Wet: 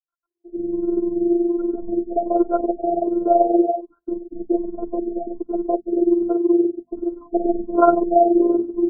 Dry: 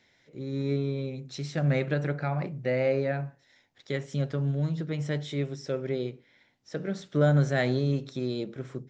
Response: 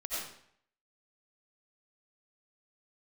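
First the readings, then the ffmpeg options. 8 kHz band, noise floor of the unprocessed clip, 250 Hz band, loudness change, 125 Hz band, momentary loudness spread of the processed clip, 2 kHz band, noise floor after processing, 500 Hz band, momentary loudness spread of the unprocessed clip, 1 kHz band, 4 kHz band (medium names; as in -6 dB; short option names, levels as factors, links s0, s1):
no reading, -66 dBFS, +12.5 dB, +9.0 dB, under -20 dB, 12 LU, under -10 dB, -82 dBFS, +10.5 dB, 11 LU, +18.5 dB, under -40 dB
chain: -filter_complex "[0:a]aeval=exprs='val(0)+0.5*0.0299*sgn(val(0))':c=same,aecho=1:1:4.9:0.41,afftfilt=real='re*gte(hypot(re,im),0.1)':imag='im*gte(hypot(re,im),0.1)':win_size=1024:overlap=0.75,asoftclip=type=tanh:threshold=0.237,highpass=160,aemphasis=mode=production:type=riaa,acrossover=split=340|2200[s0][s1][s2];[s0]adelay=180[s3];[s1]adelay=600[s4];[s3][s4][s2]amix=inputs=3:normalize=0,tremolo=f=21:d=0.621,afftfilt=real='hypot(re,im)*cos(PI*b)':imag='0':win_size=512:overlap=0.75,bandreject=f=50:t=h:w=6,bandreject=f=100:t=h:w=6,bandreject=f=150:t=h:w=6,bandreject=f=200:t=h:w=6,bandreject=f=250:t=h:w=6,alimiter=level_in=15:limit=0.891:release=50:level=0:latency=1,afftfilt=real='re*lt(b*sr/1024,690*pow(1600/690,0.5+0.5*sin(2*PI*1.3*pts/sr)))':imag='im*lt(b*sr/1024,690*pow(1600/690,0.5+0.5*sin(2*PI*1.3*pts/sr)))':win_size=1024:overlap=0.75"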